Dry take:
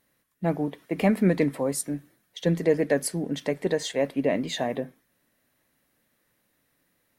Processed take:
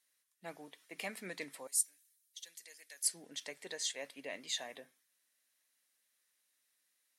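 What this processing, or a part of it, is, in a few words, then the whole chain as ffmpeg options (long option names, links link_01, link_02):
piezo pickup straight into a mixer: -filter_complex "[0:a]asettb=1/sr,asplit=3[link_01][link_02][link_03];[link_01]atrim=end=1.674[link_04];[link_02]atrim=start=1.67:end=3.04,asetpts=PTS-STARTPTS,afade=type=in:duration=0.004:curve=qsin,afade=type=out:start_time=1.366:duration=0.004:curve=qsin,aderivative[link_05];[link_03]atrim=start=3.036[link_06];[link_04][link_05]acrossfade=duration=0.004:curve1=hsin:curve2=qsin[link_07];[link_07][link_06]acrossfade=duration=0.004:curve1=qsin:curve2=hsin,lowpass=8200,aderivative,volume=1dB"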